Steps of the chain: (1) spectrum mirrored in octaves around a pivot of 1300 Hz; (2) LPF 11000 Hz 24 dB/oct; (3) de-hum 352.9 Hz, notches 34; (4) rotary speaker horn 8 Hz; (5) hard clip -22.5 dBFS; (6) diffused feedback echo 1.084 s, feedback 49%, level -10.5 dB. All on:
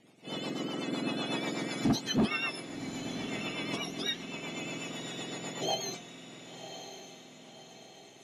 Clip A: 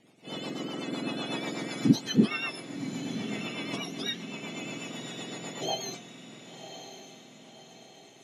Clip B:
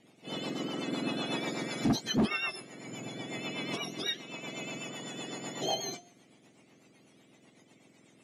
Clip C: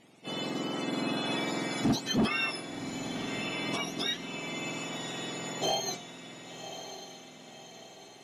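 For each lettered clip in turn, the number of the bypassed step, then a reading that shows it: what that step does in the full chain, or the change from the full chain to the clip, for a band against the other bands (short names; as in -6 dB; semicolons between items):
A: 5, distortion -6 dB; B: 6, echo-to-direct -9.5 dB to none; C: 4, 125 Hz band -1.5 dB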